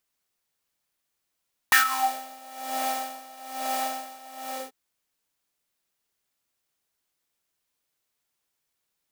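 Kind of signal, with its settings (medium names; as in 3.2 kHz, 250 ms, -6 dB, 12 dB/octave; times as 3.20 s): synth patch with tremolo C4, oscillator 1 square, interval 0 st, sub -29.5 dB, noise -2 dB, filter highpass, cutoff 450 Hz, Q 8.6, filter envelope 2 oct, filter decay 0.40 s, filter sustain 25%, attack 1.4 ms, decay 0.12 s, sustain -21 dB, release 0.22 s, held 2.77 s, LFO 1.1 Hz, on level 18.5 dB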